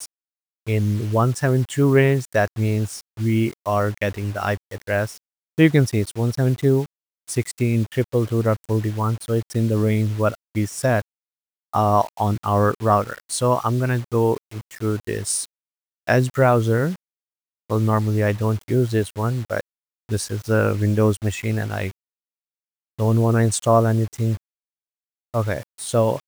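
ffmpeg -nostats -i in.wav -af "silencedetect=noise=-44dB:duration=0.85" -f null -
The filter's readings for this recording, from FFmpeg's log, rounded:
silence_start: 21.91
silence_end: 22.99 | silence_duration: 1.07
silence_start: 24.37
silence_end: 25.34 | silence_duration: 0.97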